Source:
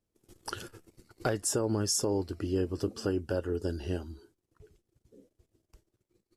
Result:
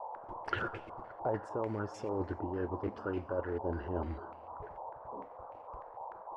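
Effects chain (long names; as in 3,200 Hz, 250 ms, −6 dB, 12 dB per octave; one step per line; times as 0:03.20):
parametric band 570 Hz +4.5 dB 0.58 octaves
reversed playback
downward compressor 12 to 1, threshold −38 dBFS, peak gain reduction 16 dB
reversed playback
dense smooth reverb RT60 2.3 s, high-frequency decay 1×, DRR 17.5 dB
noise in a band 470–1,000 Hz −57 dBFS
in parallel at −5 dB: floating-point word with a short mantissa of 2 bits
on the sum: low-pass on a step sequencer 6.7 Hz 880–2,400 Hz
level +1 dB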